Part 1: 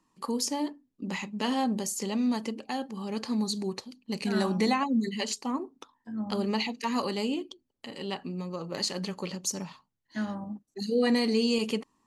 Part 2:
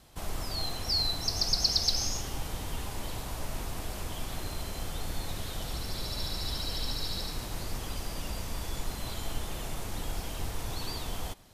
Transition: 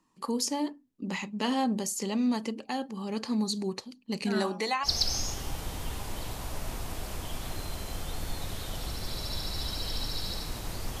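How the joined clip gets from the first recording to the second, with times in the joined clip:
part 1
4.34–4.89 s: high-pass 170 Hz -> 1.2 kHz
4.86 s: go over to part 2 from 1.73 s, crossfade 0.06 s

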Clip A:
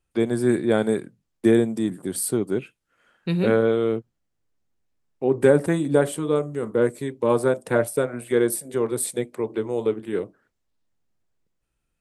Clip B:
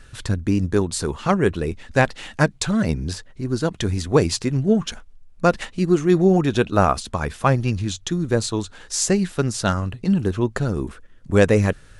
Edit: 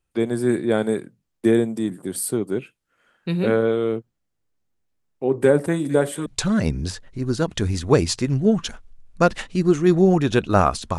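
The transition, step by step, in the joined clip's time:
clip A
5.50–6.26 s: feedback echo behind a high-pass 210 ms, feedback 82%, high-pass 2.8 kHz, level -6 dB
6.26 s: go over to clip B from 2.49 s

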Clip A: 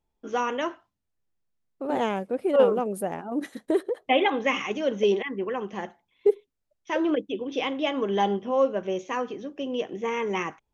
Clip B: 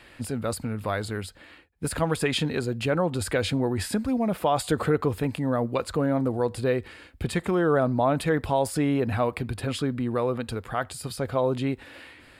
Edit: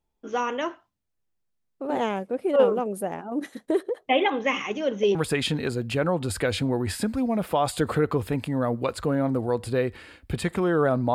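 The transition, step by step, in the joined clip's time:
clip A
5.15 s: go over to clip B from 2.06 s

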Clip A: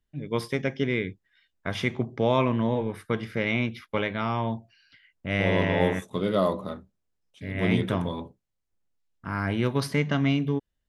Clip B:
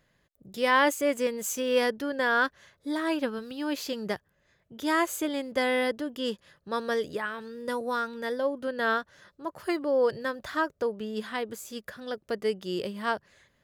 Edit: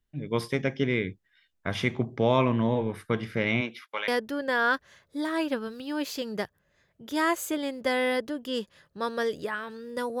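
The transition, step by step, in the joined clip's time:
clip A
3.60–4.08 s: high-pass 270 Hz -> 1.2 kHz
4.08 s: go over to clip B from 1.79 s

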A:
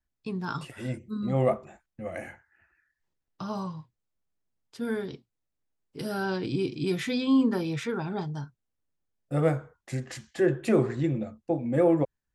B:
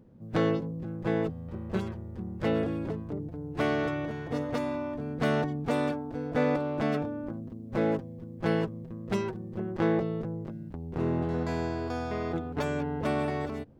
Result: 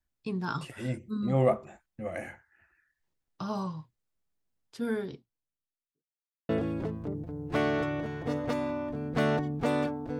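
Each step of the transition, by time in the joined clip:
A
4.70–6.04 s: studio fade out
6.04–6.49 s: mute
6.49 s: go over to B from 2.54 s

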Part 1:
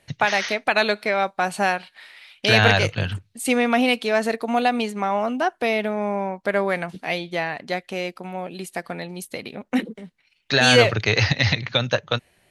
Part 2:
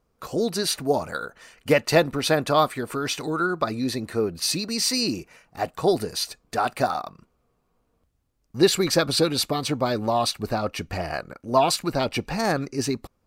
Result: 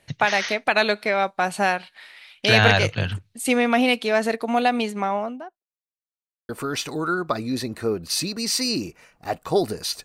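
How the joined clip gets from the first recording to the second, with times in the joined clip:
part 1
4.97–5.63 s: studio fade out
5.63–6.49 s: mute
6.49 s: go over to part 2 from 2.81 s

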